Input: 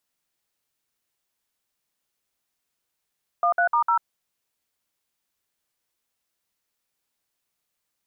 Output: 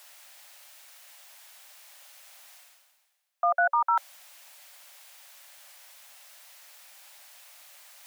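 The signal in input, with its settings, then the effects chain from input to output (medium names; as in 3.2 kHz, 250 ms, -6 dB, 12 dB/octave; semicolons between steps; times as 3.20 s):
DTMF "13*0", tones 94 ms, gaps 57 ms, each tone -20 dBFS
reverse; upward compressor, threshold -25 dBFS; reverse; rippled Chebyshev high-pass 550 Hz, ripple 3 dB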